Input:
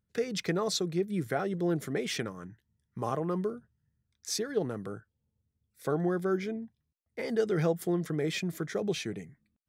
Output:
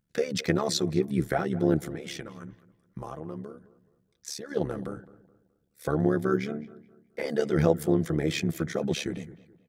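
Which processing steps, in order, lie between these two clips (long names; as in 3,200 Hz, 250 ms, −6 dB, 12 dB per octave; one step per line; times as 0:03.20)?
comb filter 6 ms, depth 52%
0:01.78–0:04.51: downward compressor 4 to 1, threshold −39 dBFS, peak gain reduction 12 dB
amplitude modulation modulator 72 Hz, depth 65%
feedback echo with a low-pass in the loop 212 ms, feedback 36%, low-pass 2,500 Hz, level −18 dB
level +5.5 dB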